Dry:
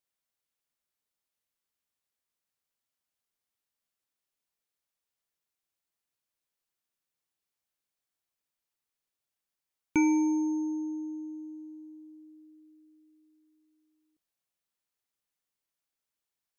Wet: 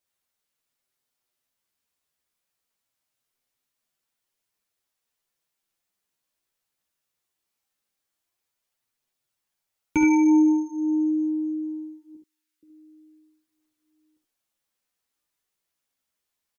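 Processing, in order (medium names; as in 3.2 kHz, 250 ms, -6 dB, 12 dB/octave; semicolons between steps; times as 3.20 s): 12.15–12.63 s: inverse Chebyshev high-pass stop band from 620 Hz, stop band 40 dB; early reflections 52 ms -11 dB, 71 ms -6 dB; chorus voices 2, 0.22 Hz, delay 12 ms, depth 4.2 ms; trim +8 dB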